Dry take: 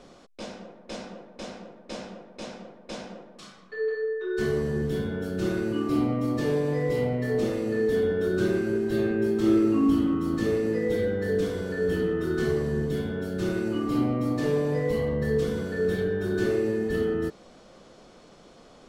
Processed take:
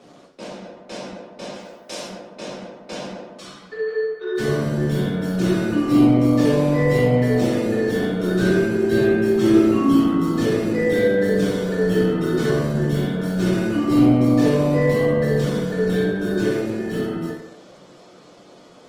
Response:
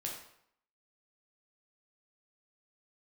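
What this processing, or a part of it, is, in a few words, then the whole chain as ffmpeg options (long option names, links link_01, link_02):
far-field microphone of a smart speaker: -filter_complex "[0:a]asplit=3[link_01][link_02][link_03];[link_01]afade=type=out:start_time=1.54:duration=0.02[link_04];[link_02]aemphasis=mode=production:type=bsi,afade=type=in:start_time=1.54:duration=0.02,afade=type=out:start_time=2.07:duration=0.02[link_05];[link_03]afade=type=in:start_time=2.07:duration=0.02[link_06];[link_04][link_05][link_06]amix=inputs=3:normalize=0[link_07];[1:a]atrim=start_sample=2205[link_08];[link_07][link_08]afir=irnorm=-1:irlink=0,highpass=frequency=120:width=0.5412,highpass=frequency=120:width=1.3066,dynaudnorm=framelen=730:gausssize=9:maxgain=4dB,volume=5.5dB" -ar 48000 -c:a libopus -b:a 20k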